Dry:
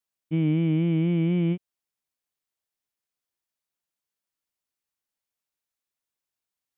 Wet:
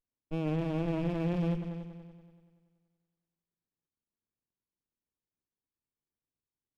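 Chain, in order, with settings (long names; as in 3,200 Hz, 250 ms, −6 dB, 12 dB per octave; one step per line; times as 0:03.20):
echo machine with several playback heads 95 ms, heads all three, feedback 45%, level −14.5 dB
windowed peak hold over 65 samples
level −4.5 dB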